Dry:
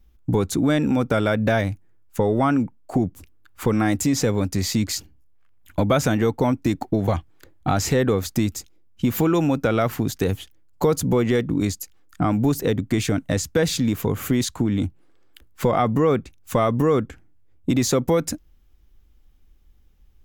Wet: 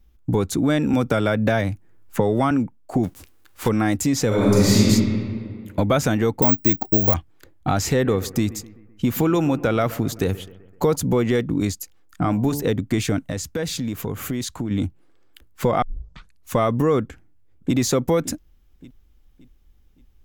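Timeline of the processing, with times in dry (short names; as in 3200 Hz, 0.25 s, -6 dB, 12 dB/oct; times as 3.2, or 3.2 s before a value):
0.93–2.51 three-band squash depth 70%
3.03–3.67 spectral whitening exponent 0.6
4.27–4.81 reverb throw, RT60 2.1 s, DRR -7 dB
6.42–7.14 careless resampling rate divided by 2×, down none, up zero stuff
7.8–10.96 analogue delay 0.128 s, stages 2048, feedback 51%, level -17.5 dB
11.8–12.62 de-hum 72.46 Hz, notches 15
13.29–14.71 compressor 2:1, threshold -26 dBFS
15.82 tape start 0.71 s
17.04–17.76 echo throw 0.57 s, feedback 40%, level -15 dB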